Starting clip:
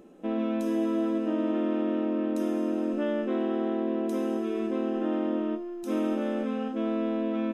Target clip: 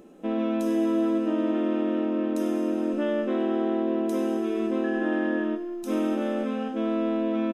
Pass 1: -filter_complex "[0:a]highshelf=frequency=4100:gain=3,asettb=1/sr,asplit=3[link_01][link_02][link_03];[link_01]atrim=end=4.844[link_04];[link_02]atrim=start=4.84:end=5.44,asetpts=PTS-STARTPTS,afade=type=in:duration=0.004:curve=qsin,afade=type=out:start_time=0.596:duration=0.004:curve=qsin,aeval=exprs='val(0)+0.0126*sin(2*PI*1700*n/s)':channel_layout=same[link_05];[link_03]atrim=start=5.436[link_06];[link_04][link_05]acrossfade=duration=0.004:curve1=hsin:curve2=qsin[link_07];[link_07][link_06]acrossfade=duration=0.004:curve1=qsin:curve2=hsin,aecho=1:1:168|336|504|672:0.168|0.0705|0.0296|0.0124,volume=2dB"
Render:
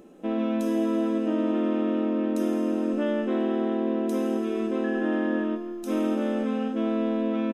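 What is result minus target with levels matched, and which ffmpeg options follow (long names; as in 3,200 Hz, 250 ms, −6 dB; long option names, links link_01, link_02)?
echo 71 ms late
-filter_complex "[0:a]highshelf=frequency=4100:gain=3,asettb=1/sr,asplit=3[link_01][link_02][link_03];[link_01]atrim=end=4.844[link_04];[link_02]atrim=start=4.84:end=5.44,asetpts=PTS-STARTPTS,afade=type=in:duration=0.004:curve=qsin,afade=type=out:start_time=0.596:duration=0.004:curve=qsin,aeval=exprs='val(0)+0.0126*sin(2*PI*1700*n/s)':channel_layout=same[link_05];[link_03]atrim=start=5.436[link_06];[link_04][link_05]acrossfade=duration=0.004:curve1=hsin:curve2=qsin[link_07];[link_07][link_06]acrossfade=duration=0.004:curve1=qsin:curve2=hsin,aecho=1:1:97|194|291|388:0.168|0.0705|0.0296|0.0124,volume=2dB"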